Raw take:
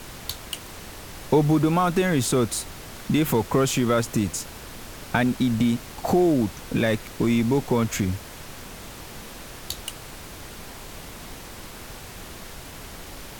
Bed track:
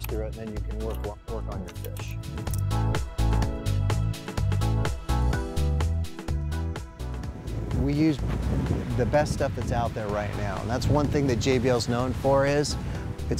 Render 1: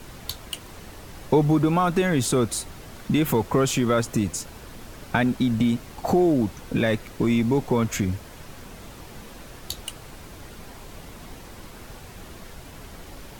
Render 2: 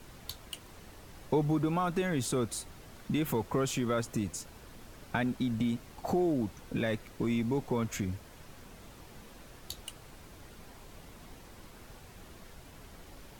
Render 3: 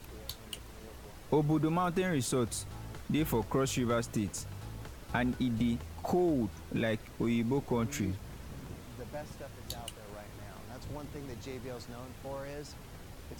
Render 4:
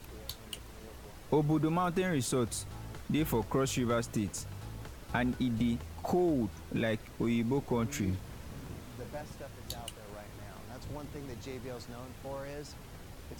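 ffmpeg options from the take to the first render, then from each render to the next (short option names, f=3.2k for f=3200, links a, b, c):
-af "afftdn=nr=6:nf=-41"
-af "volume=-9.5dB"
-filter_complex "[1:a]volume=-20dB[a];[0:a][a]amix=inputs=2:normalize=0"
-filter_complex "[0:a]asettb=1/sr,asplit=3[a][b][c];[a]atrim=end=8.024[d];[b]atrim=start=8.02:end=9.21,asetpts=PTS-STARTPTS,afade=t=in:d=0.004:c=qsin,afade=t=out:st=1.186:d=0.004:c=qsin,asplit=2[e][f];[f]adelay=43,volume=-7.5dB[g];[e][g]amix=inputs=2:normalize=0,atrim=end_sample=52479[h];[c]atrim=start=9.206[i];[d][h]acrossfade=d=0.004:c1=hsin:c2=qsin[j];[j][i]acrossfade=d=0.004:c1=qsin:c2=hsin"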